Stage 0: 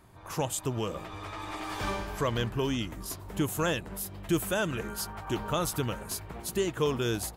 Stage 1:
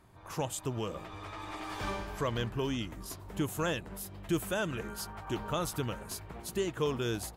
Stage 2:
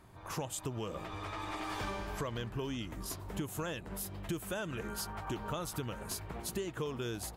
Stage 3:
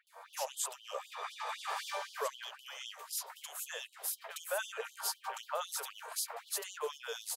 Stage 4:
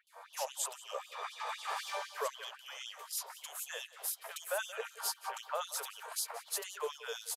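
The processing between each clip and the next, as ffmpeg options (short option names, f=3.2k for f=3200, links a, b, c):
-af "highshelf=f=8.3k:g=-4,volume=-3.5dB"
-af "acompressor=threshold=-37dB:ratio=6,volume=2.5dB"
-filter_complex "[0:a]acrossover=split=2500[a][b];[b]adelay=70[c];[a][c]amix=inputs=2:normalize=0,afftfilt=real='re*gte(b*sr/1024,400*pow(3000/400,0.5+0.5*sin(2*PI*3.9*pts/sr)))':imag='im*gte(b*sr/1024,400*pow(3000/400,0.5+0.5*sin(2*PI*3.9*pts/sr)))':win_size=1024:overlap=0.75,volume=4.5dB"
-af "aecho=1:1:178:0.119,aresample=32000,aresample=44100"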